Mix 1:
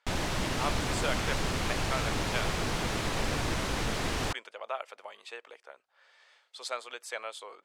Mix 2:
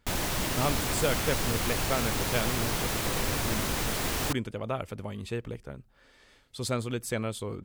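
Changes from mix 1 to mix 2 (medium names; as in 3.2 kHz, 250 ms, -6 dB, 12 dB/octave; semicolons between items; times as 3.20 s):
speech: remove high-pass 630 Hz 24 dB/octave; master: remove distance through air 63 m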